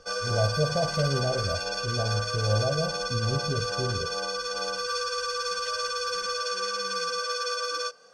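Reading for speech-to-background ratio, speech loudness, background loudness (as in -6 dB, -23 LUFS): -0.5 dB, -30.0 LUFS, -29.5 LUFS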